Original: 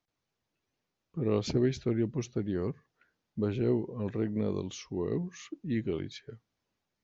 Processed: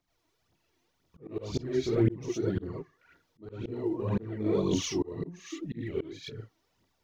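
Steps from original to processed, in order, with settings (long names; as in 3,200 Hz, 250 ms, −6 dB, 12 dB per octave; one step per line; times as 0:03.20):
reverb whose tail is shaped and stops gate 130 ms rising, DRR −6.5 dB
phase shifter 1.9 Hz, delay 3.3 ms, feedback 60%
volume swells 579 ms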